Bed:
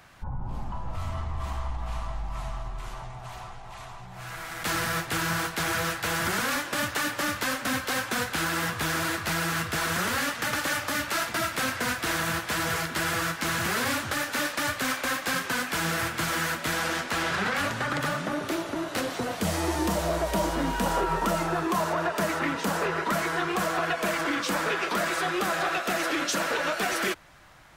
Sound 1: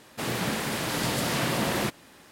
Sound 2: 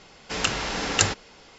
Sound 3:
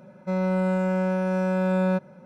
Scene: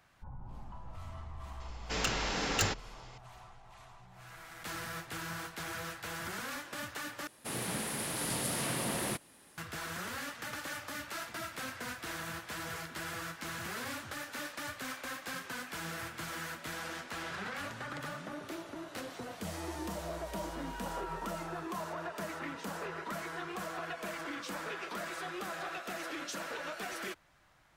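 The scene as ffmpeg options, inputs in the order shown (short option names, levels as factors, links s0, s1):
-filter_complex "[0:a]volume=0.224[s0];[2:a]asoftclip=type=tanh:threshold=0.141[s1];[1:a]equalizer=f=10000:t=o:w=0.41:g=14[s2];[s0]asplit=2[s3][s4];[s3]atrim=end=7.274[s5];[s2]atrim=end=2.31,asetpts=PTS-STARTPTS,volume=0.355[s6];[s4]atrim=start=9.576[s7];[s1]atrim=end=1.58,asetpts=PTS-STARTPTS,volume=0.562,afade=t=in:d=0.004:c=hsin,afade=t=out:st=1.576:d=0.004:c=hsin,adelay=1600[s8];[s5][s6]acrossfade=d=0.004:c1=hsin:c2=hsin[s9];[s9][s7]acrossfade=d=0.004:c1=hsin:c2=hsin[s10];[s10][s8]amix=inputs=2:normalize=0"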